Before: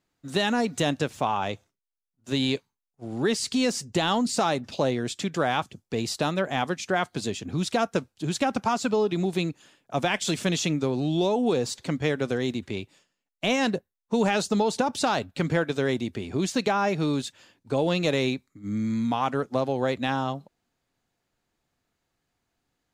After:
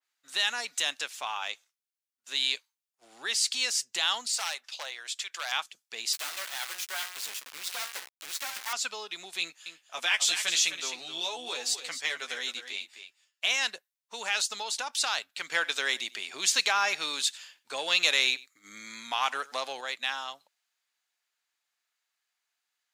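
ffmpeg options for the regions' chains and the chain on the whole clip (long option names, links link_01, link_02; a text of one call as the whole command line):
ffmpeg -i in.wav -filter_complex "[0:a]asettb=1/sr,asplit=3[link_01][link_02][link_03];[link_01]atrim=end=4.284[link_04];[link_02]atrim=start=4.28:end=5.52,asetpts=PTS-STARTPTS,afade=type=in:duration=0.004:curve=qsin,afade=type=out:start_time=1.236:duration=0.004:curve=qsin,highpass=660,highshelf=frequency=2400:gain=-2.5,aeval=exprs='0.0794*(abs(mod(val(0)/0.0794+3,4)-2)-1)':channel_layout=same[link_05];[link_03]atrim=start=5.516[link_06];[link_04][link_05]acrossfade=duration=0.004:curve1=hsin:curve2=qsin[link_07];[link_07][link_06]acrossfade=duration=0.004:curve1=qsin:curve2=hsin,asettb=1/sr,asplit=3[link_08][link_09][link_10];[link_08]atrim=end=6.134[link_11];[link_09]atrim=start=6.13:end=8.73,asetpts=PTS-STARTPTS,afade=type=in:duration=0.004:curve=qsin,afade=type=out:start_time=2.596:duration=0.004:curve=qsin,bandreject=frequency=60.43:width_type=h:width=4,bandreject=frequency=120.86:width_type=h:width=4,bandreject=frequency=181.29:width_type=h:width=4,bandreject=frequency=241.72:width_type=h:width=4,bandreject=frequency=302.15:width_type=h:width=4,bandreject=frequency=362.58:width_type=h:width=4,bandreject=frequency=423.01:width_type=h:width=4,bandreject=frequency=483.44:width_type=h:width=4,bandreject=frequency=543.87:width_type=h:width=4,bandreject=frequency=604.3:width_type=h:width=4,bandreject=frequency=664.73:width_type=h:width=4,bandreject=frequency=725.16:width_type=h:width=4,bandreject=frequency=785.59:width_type=h:width=4,bandreject=frequency=846.02:width_type=h:width=4,bandreject=frequency=906.45:width_type=h:width=4,bandreject=frequency=966.88:width_type=h:width=4,bandreject=frequency=1027.31:width_type=h:width=4,bandreject=frequency=1087.74:width_type=h:width=4,bandreject=frequency=1148.17:width_type=h:width=4,bandreject=frequency=1208.6:width_type=h:width=4,bandreject=frequency=1269.03:width_type=h:width=4,bandreject=frequency=1329.46:width_type=h:width=4,bandreject=frequency=1389.89:width_type=h:width=4,bandreject=frequency=1450.32:width_type=h:width=4,bandreject=frequency=1510.75:width_type=h:width=4,bandreject=frequency=1571.18:width_type=h:width=4,bandreject=frequency=1631.61:width_type=h:width=4,bandreject=frequency=1692.04:width_type=h:width=4,bandreject=frequency=1752.47:width_type=h:width=4,bandreject=frequency=1812.9:width_type=h:width=4,bandreject=frequency=1873.33:width_type=h:width=4,bandreject=frequency=1933.76:width_type=h:width=4,bandreject=frequency=1994.19:width_type=h:width=4,bandreject=frequency=2054.62:width_type=h:width=4,bandreject=frequency=2115.05:width_type=h:width=4,bandreject=frequency=2175.48:width_type=h:width=4,bandreject=frequency=2235.91:width_type=h:width=4,bandreject=frequency=2296.34:width_type=h:width=4,acrusher=bits=3:dc=4:mix=0:aa=0.000001,asplit=2[link_12][link_13];[link_13]adelay=14,volume=-11.5dB[link_14];[link_12][link_14]amix=inputs=2:normalize=0,atrim=end_sample=114660[link_15];[link_10]atrim=start=8.726[link_16];[link_11][link_15]acrossfade=duration=0.004:curve1=hsin:curve2=qsin[link_17];[link_17][link_16]acrossfade=duration=0.004:curve1=qsin:curve2=hsin,asettb=1/sr,asplit=3[link_18][link_19][link_20];[link_18]atrim=end=9.404[link_21];[link_19]atrim=start=9.4:end=13.46,asetpts=PTS-STARTPTS,afade=type=in:duration=0.004:curve=qsin,afade=type=out:start_time=4.056:duration=0.004:curve=qsin,asplit=2[link_22][link_23];[link_23]adelay=12,volume=-4dB[link_24];[link_22][link_24]amix=inputs=2:normalize=0,atrim=end_sample=179046,aecho=1:1:258:0.316,atrim=end_sample=179046[link_25];[link_20]atrim=start=13.456[link_26];[link_21][link_25]acrossfade=duration=0.004:curve1=hsin:curve2=qsin[link_27];[link_27][link_26]acrossfade=duration=0.004:curve1=qsin:curve2=hsin,asettb=1/sr,asplit=3[link_28][link_29][link_30];[link_28]atrim=end=15.524[link_31];[link_29]atrim=start=15.52:end=19.81,asetpts=PTS-STARTPTS,afade=type=in:duration=0.004:curve=qsin,afade=type=out:start_time=4.286:duration=0.004:curve=qsin,acontrast=42,aecho=1:1:95:0.0841,atrim=end_sample=189189[link_32];[link_30]atrim=start=19.806[link_33];[link_31][link_32]acrossfade=duration=0.004:curve1=hsin:curve2=qsin[link_34];[link_34][link_33]acrossfade=duration=0.004:curve1=qsin:curve2=hsin,highpass=1500,adynamicequalizer=threshold=0.01:dfrequency=2200:dqfactor=0.7:tfrequency=2200:tqfactor=0.7:attack=5:release=100:ratio=0.375:range=2:mode=boostabove:tftype=highshelf" out.wav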